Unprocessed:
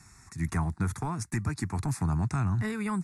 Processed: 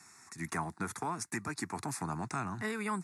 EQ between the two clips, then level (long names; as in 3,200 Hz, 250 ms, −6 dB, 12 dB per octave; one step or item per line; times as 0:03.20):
high-pass filter 300 Hz 12 dB per octave
0.0 dB